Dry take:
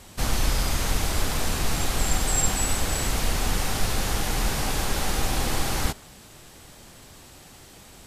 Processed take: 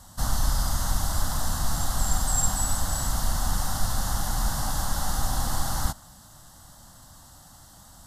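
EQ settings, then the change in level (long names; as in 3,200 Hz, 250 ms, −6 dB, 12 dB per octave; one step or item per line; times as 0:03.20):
phaser with its sweep stopped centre 1,000 Hz, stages 4
0.0 dB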